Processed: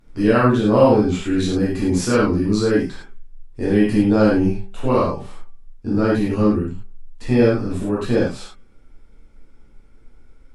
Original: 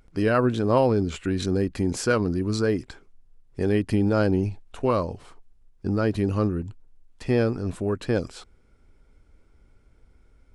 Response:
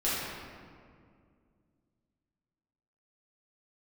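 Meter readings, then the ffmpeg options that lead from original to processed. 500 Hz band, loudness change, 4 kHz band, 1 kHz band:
+6.0 dB, +6.5 dB, +5.5 dB, +6.0 dB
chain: -filter_complex "[0:a]bandreject=f=194.2:t=h:w=4,bandreject=f=388.4:t=h:w=4,bandreject=f=582.6:t=h:w=4,bandreject=f=776.8:t=h:w=4,bandreject=f=971:t=h:w=4,bandreject=f=1165.2:t=h:w=4,bandreject=f=1359.4:t=h:w=4,bandreject=f=1553.6:t=h:w=4,bandreject=f=1747.8:t=h:w=4,bandreject=f=1942:t=h:w=4,bandreject=f=2136.2:t=h:w=4,bandreject=f=2330.4:t=h:w=4,bandreject=f=2524.6:t=h:w=4,bandreject=f=2718.8:t=h:w=4,bandreject=f=2913:t=h:w=4,bandreject=f=3107.2:t=h:w=4,bandreject=f=3301.4:t=h:w=4[s0];[1:a]atrim=start_sample=2205,atrim=end_sample=3528,asetrate=29547,aresample=44100[s1];[s0][s1]afir=irnorm=-1:irlink=0,volume=0.668"

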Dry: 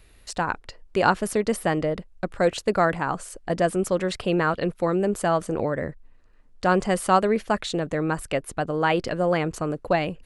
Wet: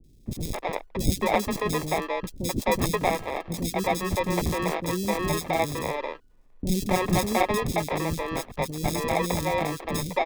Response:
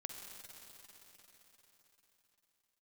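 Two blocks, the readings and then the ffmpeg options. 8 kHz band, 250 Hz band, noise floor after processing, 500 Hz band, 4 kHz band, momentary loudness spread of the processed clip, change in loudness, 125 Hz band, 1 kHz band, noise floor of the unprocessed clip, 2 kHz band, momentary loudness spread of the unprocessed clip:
+3.0 dB, -2.5 dB, -53 dBFS, -4.0 dB, +1.5 dB, 8 LU, -2.5 dB, +0.5 dB, -2.5 dB, -53 dBFS, -3.0 dB, 8 LU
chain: -filter_complex "[0:a]lowpass=f=4700:t=q:w=10,acrusher=samples=30:mix=1:aa=0.000001,acrossover=split=350|3600[s0][s1][s2];[s2]adelay=40[s3];[s1]adelay=260[s4];[s0][s4][s3]amix=inputs=3:normalize=0,volume=0.794"

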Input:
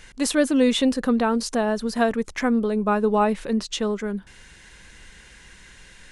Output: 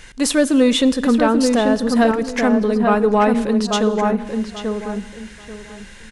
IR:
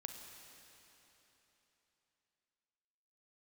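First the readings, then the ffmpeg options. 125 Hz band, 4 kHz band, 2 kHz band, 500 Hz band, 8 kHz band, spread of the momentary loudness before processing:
no reading, +5.5 dB, +5.5 dB, +6.0 dB, +5.0 dB, 7 LU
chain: -filter_complex "[0:a]asplit=2[s0][s1];[s1]adelay=837,lowpass=f=1800:p=1,volume=0.631,asplit=2[s2][s3];[s3]adelay=837,lowpass=f=1800:p=1,volume=0.24,asplit=2[s4][s5];[s5]adelay=837,lowpass=f=1800:p=1,volume=0.24[s6];[s0][s2][s4][s6]amix=inputs=4:normalize=0,acontrast=78,asplit=2[s7][s8];[1:a]atrim=start_sample=2205,afade=t=out:st=0.4:d=0.01,atrim=end_sample=18081[s9];[s8][s9]afir=irnorm=-1:irlink=0,volume=0.531[s10];[s7][s10]amix=inputs=2:normalize=0,volume=0.631"

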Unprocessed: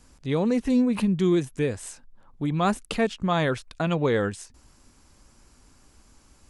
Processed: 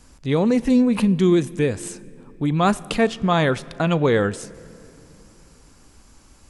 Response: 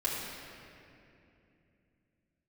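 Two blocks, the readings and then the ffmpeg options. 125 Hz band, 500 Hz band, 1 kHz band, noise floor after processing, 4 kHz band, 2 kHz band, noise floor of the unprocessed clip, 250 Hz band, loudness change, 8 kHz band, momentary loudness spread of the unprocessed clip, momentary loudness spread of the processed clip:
+5.0 dB, +5.0 dB, +5.0 dB, -52 dBFS, +5.0 dB, +5.0 dB, -58 dBFS, +5.0 dB, +5.0 dB, +5.0 dB, 9 LU, 13 LU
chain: -filter_complex "[0:a]asplit=2[s0][s1];[1:a]atrim=start_sample=2205,adelay=35[s2];[s1][s2]afir=irnorm=-1:irlink=0,volume=0.0562[s3];[s0][s3]amix=inputs=2:normalize=0,volume=1.78"

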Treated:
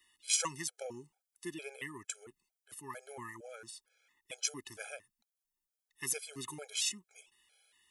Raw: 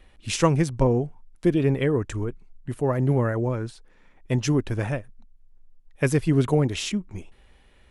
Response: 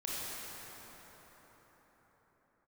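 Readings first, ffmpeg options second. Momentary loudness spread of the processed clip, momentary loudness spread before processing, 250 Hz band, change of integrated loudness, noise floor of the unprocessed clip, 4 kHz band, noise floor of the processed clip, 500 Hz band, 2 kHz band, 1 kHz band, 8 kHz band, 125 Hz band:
18 LU, 12 LU, -26.0 dB, -14.0 dB, -56 dBFS, -4.0 dB, under -85 dBFS, -23.0 dB, -10.5 dB, -15.5 dB, +1.0 dB, -33.0 dB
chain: -af "aderivative,afftfilt=real='re*gt(sin(2*PI*2.2*pts/sr)*(1-2*mod(floor(b*sr/1024/430),2)),0)':imag='im*gt(sin(2*PI*2.2*pts/sr)*(1-2*mod(floor(b*sr/1024/430),2)),0)':win_size=1024:overlap=0.75,volume=1.68"

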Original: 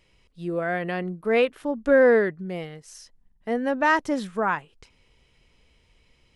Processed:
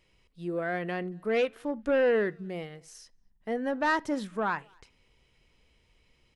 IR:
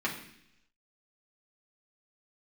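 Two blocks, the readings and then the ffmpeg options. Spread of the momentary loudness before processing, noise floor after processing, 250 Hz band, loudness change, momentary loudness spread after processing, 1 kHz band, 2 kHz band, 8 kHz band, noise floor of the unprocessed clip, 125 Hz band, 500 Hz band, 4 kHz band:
17 LU, -68 dBFS, -5.5 dB, -6.5 dB, 14 LU, -6.0 dB, -6.5 dB, -4.5 dB, -63 dBFS, -5.5 dB, -6.5 dB, -4.0 dB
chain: -filter_complex "[0:a]asoftclip=type=tanh:threshold=0.188,asplit=2[s0][s1];[s1]adelay=230,highpass=300,lowpass=3400,asoftclip=type=hard:threshold=0.0596,volume=0.0398[s2];[s0][s2]amix=inputs=2:normalize=0,asplit=2[s3][s4];[1:a]atrim=start_sample=2205,atrim=end_sample=3969[s5];[s4][s5]afir=irnorm=-1:irlink=0,volume=0.0841[s6];[s3][s6]amix=inputs=2:normalize=0,volume=0.562"

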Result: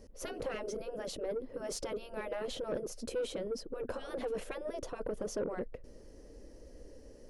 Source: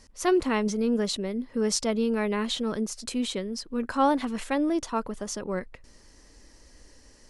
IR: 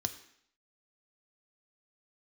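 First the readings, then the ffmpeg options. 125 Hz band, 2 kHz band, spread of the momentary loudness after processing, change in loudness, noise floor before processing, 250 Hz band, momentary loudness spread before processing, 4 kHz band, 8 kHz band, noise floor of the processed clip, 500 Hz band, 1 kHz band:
-12.0 dB, -12.0 dB, 18 LU, -11.5 dB, -55 dBFS, -18.5 dB, 8 LU, -13.5 dB, -12.5 dB, -54 dBFS, -7.5 dB, -16.5 dB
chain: -af "afftfilt=real='re*lt(hypot(re,im),0.158)':imag='im*lt(hypot(re,im),0.158)':win_size=1024:overlap=0.75,equalizer=f=500:t=o:w=1:g=11,equalizer=f=1000:t=o:w=1:g=-10,equalizer=f=2000:t=o:w=1:g=-8,equalizer=f=4000:t=o:w=1:g=-9,equalizer=f=8000:t=o:w=1:g=-12,asoftclip=type=tanh:threshold=0.0335,volume=1.12"

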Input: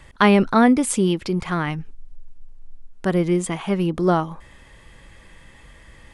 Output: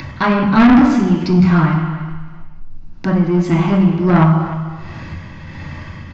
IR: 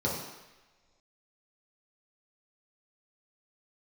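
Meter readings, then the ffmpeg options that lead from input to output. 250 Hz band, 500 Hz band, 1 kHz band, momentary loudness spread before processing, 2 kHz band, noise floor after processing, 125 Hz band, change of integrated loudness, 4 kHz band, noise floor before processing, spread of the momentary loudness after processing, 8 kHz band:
+8.0 dB, +1.0 dB, +4.5 dB, 11 LU, +4.0 dB, -33 dBFS, +11.5 dB, +6.5 dB, +1.0 dB, -48 dBFS, 21 LU, under -10 dB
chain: -filter_complex "[0:a]tremolo=f=1.4:d=0.71,lowpass=4200[s0];[1:a]atrim=start_sample=2205,asetrate=48510,aresample=44100[s1];[s0][s1]afir=irnorm=-1:irlink=0,aresample=16000,asoftclip=type=tanh:threshold=0.447,aresample=44100,asplit=2[s2][s3];[s3]adelay=303.2,volume=0.2,highshelf=f=4000:g=-6.82[s4];[s2][s4]amix=inputs=2:normalize=0,asplit=2[s5][s6];[s6]acompressor=mode=upward:threshold=0.126:ratio=2.5,volume=1.19[s7];[s5][s7]amix=inputs=2:normalize=0,equalizer=f=480:t=o:w=0.98:g=-15,volume=0.841"

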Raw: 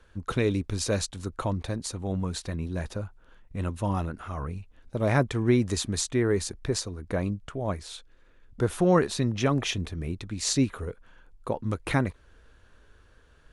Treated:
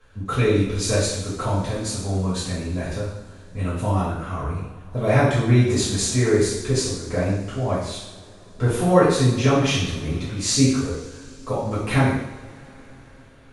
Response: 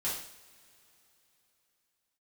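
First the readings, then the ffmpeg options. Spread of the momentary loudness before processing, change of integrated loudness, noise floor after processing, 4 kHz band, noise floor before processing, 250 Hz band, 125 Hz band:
13 LU, +6.5 dB, -46 dBFS, +7.0 dB, -58 dBFS, +5.5 dB, +8.0 dB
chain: -filter_complex "[1:a]atrim=start_sample=2205,asetrate=33075,aresample=44100[s0];[0:a][s0]afir=irnorm=-1:irlink=0"

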